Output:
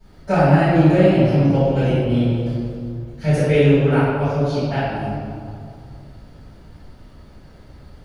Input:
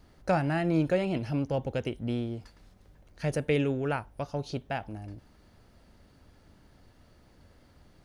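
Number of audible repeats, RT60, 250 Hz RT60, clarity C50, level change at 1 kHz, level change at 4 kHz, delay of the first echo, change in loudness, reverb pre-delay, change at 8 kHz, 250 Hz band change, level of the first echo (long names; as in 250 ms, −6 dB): no echo audible, 2.3 s, 2.4 s, −3.5 dB, +12.0 dB, +10.5 dB, no echo audible, +13.5 dB, 3 ms, can't be measured, +13.5 dB, no echo audible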